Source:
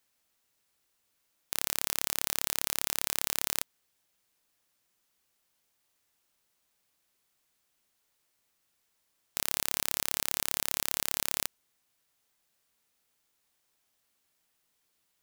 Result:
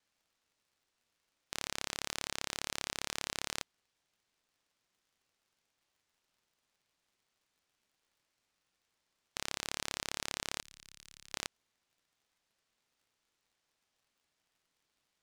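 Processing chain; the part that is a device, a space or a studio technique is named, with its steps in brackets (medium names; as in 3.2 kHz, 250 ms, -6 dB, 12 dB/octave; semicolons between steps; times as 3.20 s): 10.61–11.34 s: amplifier tone stack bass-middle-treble 6-0-2; lo-fi chain (low-pass 6.2 kHz 12 dB/octave; wow and flutter; crackle 77 per s -62 dBFS); trim -2.5 dB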